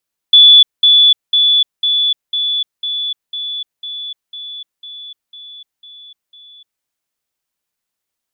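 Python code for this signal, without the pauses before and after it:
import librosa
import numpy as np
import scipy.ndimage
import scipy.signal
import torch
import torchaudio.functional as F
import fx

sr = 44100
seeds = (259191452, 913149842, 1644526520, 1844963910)

y = fx.level_ladder(sr, hz=3450.0, from_db=-2.0, step_db=-3.0, steps=13, dwell_s=0.3, gap_s=0.2)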